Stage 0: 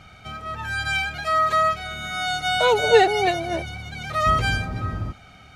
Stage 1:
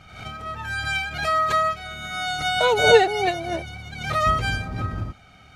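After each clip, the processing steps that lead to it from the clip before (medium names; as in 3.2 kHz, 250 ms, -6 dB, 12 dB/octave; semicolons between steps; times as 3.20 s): transient shaper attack +5 dB, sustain -1 dB; swell ahead of each attack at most 75 dB/s; trim -2.5 dB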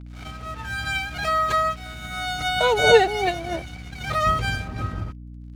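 crossover distortion -42 dBFS; hum 60 Hz, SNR 15 dB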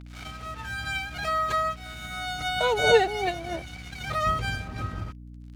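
tape noise reduction on one side only encoder only; trim -4.5 dB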